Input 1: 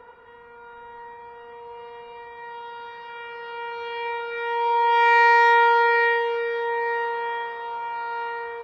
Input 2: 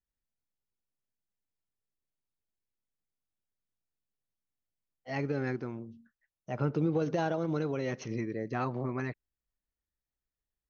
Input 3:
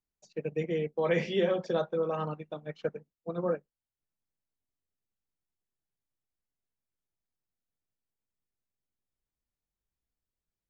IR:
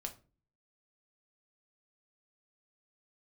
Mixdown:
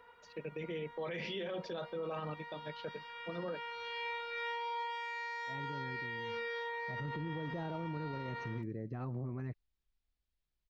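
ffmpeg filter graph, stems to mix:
-filter_complex "[0:a]equalizer=frequency=520:width=0.36:gain=-3.5,volume=-11.5dB[link_01];[1:a]aemphasis=mode=reproduction:type=riaa,adelay=400,volume=-10.5dB[link_02];[2:a]lowpass=frequency=4400:width=0.5412,lowpass=frequency=4400:width=1.3066,volume=-4dB[link_03];[link_01][link_03]amix=inputs=2:normalize=0,highshelf=frequency=2400:gain=12,alimiter=level_in=1dB:limit=-24dB:level=0:latency=1,volume=-1dB,volume=0dB[link_04];[link_02][link_04]amix=inputs=2:normalize=0,alimiter=level_in=8.5dB:limit=-24dB:level=0:latency=1:release=26,volume=-8.5dB"

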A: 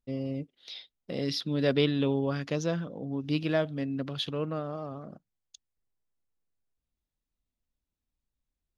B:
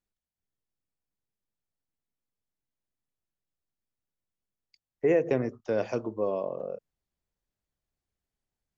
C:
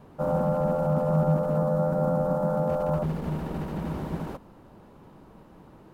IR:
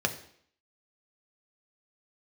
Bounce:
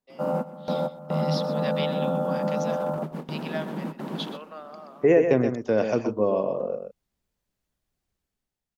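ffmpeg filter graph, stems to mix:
-filter_complex "[0:a]highpass=frequency=630:width=0.5412,highpass=frequency=630:width=1.3066,volume=-2dB,asplit=3[link_01][link_02][link_03];[link_02]volume=-14dB[link_04];[1:a]dynaudnorm=framelen=180:gausssize=7:maxgain=11dB,volume=-5.5dB,asplit=2[link_05][link_06];[link_06]volume=-7dB[link_07];[2:a]highpass=frequency=180:width=0.5412,highpass=frequency=180:width=1.3066,volume=0dB,asplit=2[link_08][link_09];[link_09]volume=-16dB[link_10];[link_03]apad=whole_len=261560[link_11];[link_08][link_11]sidechaingate=range=-38dB:threshold=-52dB:ratio=16:detection=peak[link_12];[link_04][link_07][link_10]amix=inputs=3:normalize=0,aecho=0:1:125:1[link_13];[link_01][link_05][link_12][link_13]amix=inputs=4:normalize=0,equalizer=frequency=220:width=2:gain=3.5"

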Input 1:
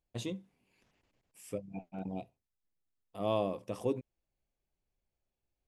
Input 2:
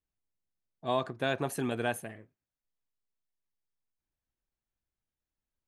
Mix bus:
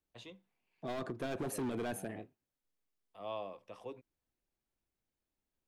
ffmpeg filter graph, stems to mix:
ffmpeg -i stem1.wav -i stem2.wav -filter_complex "[0:a]acrossover=split=590 4500:gain=0.224 1 0.178[link_01][link_02][link_03];[link_01][link_02][link_03]amix=inputs=3:normalize=0,volume=-5.5dB[link_04];[1:a]equalizer=frequency=330:width_type=o:width=1.8:gain=7.5,volume=27.5dB,asoftclip=hard,volume=-27.5dB,volume=-1dB[link_05];[link_04][link_05]amix=inputs=2:normalize=0,acrossover=split=350[link_06][link_07];[link_07]acompressor=threshold=-34dB:ratio=6[link_08];[link_06][link_08]amix=inputs=2:normalize=0,alimiter=level_in=6dB:limit=-24dB:level=0:latency=1:release=79,volume=-6dB" out.wav

